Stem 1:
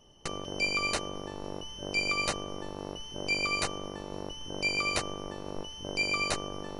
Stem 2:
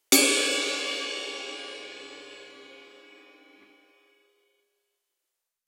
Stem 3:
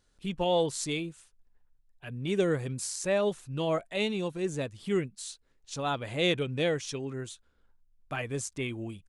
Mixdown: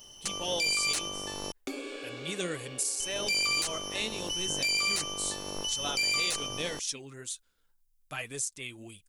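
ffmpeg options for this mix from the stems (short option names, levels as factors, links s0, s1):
-filter_complex "[0:a]asoftclip=type=tanh:threshold=0.0891,volume=0.891,asplit=3[s0][s1][s2];[s0]atrim=end=1.52,asetpts=PTS-STARTPTS,afade=t=out:st=1.516:d=0.004:c=hsin[s3];[s1]atrim=start=1.52:end=3,asetpts=PTS-STARTPTS,volume=0[s4];[s2]atrim=start=3,asetpts=PTS-STARTPTS,afade=t=in:d=0.004:c=hsin[s5];[s3][s4][s5]concat=n=3:v=0:a=1[s6];[1:a]acompressor=threshold=0.0282:ratio=2,lowpass=f=1100:p=1,adelay=1550,volume=0.562[s7];[2:a]flanger=delay=1.9:depth=4.8:regen=54:speed=1.9:shape=sinusoidal,volume=0.562[s8];[s6][s8]amix=inputs=2:normalize=0,crystalizer=i=8:c=0,alimiter=limit=0.188:level=0:latency=1:release=21,volume=1[s9];[s7][s9]amix=inputs=2:normalize=0,alimiter=limit=0.1:level=0:latency=1:release=454"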